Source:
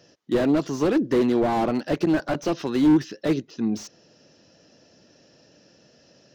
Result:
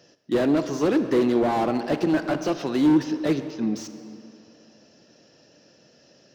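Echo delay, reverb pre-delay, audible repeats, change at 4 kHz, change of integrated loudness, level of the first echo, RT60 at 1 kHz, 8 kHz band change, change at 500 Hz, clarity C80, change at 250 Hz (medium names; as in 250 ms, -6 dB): no echo, 33 ms, no echo, +0.5 dB, 0.0 dB, no echo, 2.8 s, no reading, 0.0 dB, 10.5 dB, -0.5 dB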